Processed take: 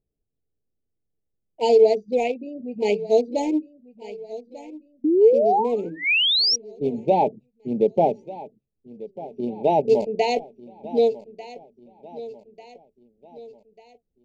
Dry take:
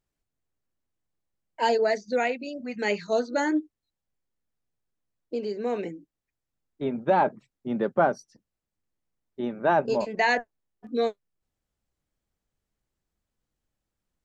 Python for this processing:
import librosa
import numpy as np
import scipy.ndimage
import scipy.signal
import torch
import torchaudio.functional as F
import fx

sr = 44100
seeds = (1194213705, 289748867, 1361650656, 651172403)

y = fx.wiener(x, sr, points=41)
y = fx.echo_feedback(y, sr, ms=1194, feedback_pct=47, wet_db=-17.0)
y = fx.spec_paint(y, sr, seeds[0], shape='rise', start_s=5.04, length_s=1.52, low_hz=290.0, high_hz=5800.0, level_db=-22.0)
y = scipy.signal.sosfilt(scipy.signal.ellip(3, 1.0, 40, [850.0, 2300.0], 'bandstop', fs=sr, output='sos'), y)
y = fx.peak_eq(y, sr, hz=440.0, db=9.5, octaves=0.21)
y = F.gain(torch.from_numpy(y), 3.5).numpy()